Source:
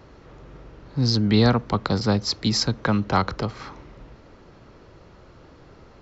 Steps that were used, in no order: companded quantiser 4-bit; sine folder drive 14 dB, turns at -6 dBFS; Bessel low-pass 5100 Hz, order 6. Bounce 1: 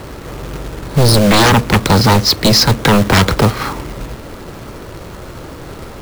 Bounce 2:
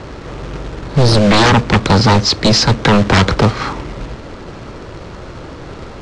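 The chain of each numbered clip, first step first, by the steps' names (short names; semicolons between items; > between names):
Bessel low-pass > sine folder > companded quantiser; sine folder > companded quantiser > Bessel low-pass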